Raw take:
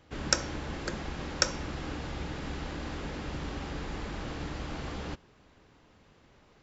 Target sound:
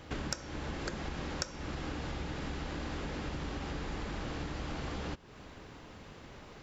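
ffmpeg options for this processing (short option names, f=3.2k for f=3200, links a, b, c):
-af "acompressor=threshold=-46dB:ratio=6,volume=10dB"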